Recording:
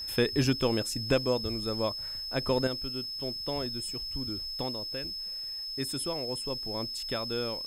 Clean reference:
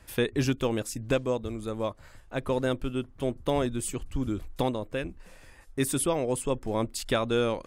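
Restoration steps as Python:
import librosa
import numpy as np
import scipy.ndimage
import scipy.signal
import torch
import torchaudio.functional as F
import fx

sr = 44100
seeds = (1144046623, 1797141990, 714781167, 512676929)

y = fx.fix_declick_ar(x, sr, threshold=6.5)
y = fx.notch(y, sr, hz=5200.0, q=30.0)
y = fx.noise_reduce(y, sr, print_start_s=5.27, print_end_s=5.77, reduce_db=13.0)
y = fx.fix_level(y, sr, at_s=2.67, step_db=8.0)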